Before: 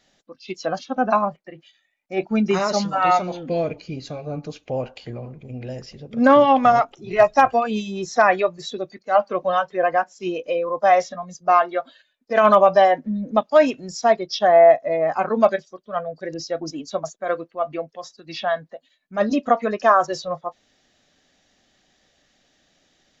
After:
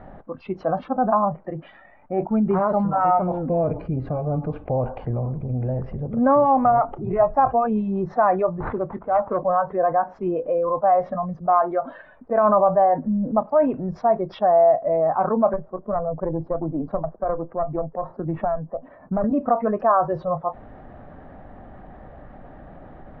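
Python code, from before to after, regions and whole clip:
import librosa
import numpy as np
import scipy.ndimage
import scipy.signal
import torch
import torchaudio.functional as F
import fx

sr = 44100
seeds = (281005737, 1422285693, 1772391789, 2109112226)

y = fx.chain(x, sr, fx.sample_hold(seeds[0], rate_hz=5500.0, jitter_pct=20),
    fx.transformer_sat(knee_hz=1200.0), at=(8.6, 9.44))
y = fx.chain(y, sr, fx.lowpass(hz=1100.0, slope=12),
    fx.tube_stage(drive_db=15.0, bias=0.6),
    fx.band_squash(depth_pct=100), at=(15.53, 19.24))
y = scipy.signal.sosfilt(scipy.signal.butter(4, 1000.0, 'lowpass', fs=sr, output='sos'), y)
y = fx.peak_eq(y, sr, hz=360.0, db=-12.0, octaves=2.8)
y = fx.env_flatten(y, sr, amount_pct=50)
y = F.gain(torch.from_numpy(y), 4.5).numpy()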